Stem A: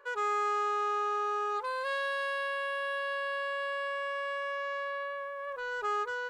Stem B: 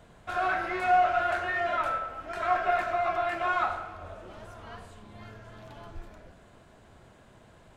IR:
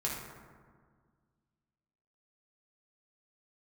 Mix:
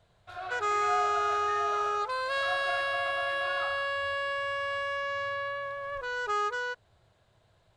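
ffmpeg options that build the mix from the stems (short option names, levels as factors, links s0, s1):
-filter_complex "[0:a]lowpass=6400,highshelf=f=3900:g=11,adelay=450,volume=1.19[s0];[1:a]equalizer=f=100:t=o:w=0.67:g=8,equalizer=f=250:t=o:w=0.67:g=-10,equalizer=f=630:t=o:w=0.67:g=3,equalizer=f=4000:t=o:w=0.67:g=9,volume=0.237[s1];[s0][s1]amix=inputs=2:normalize=0"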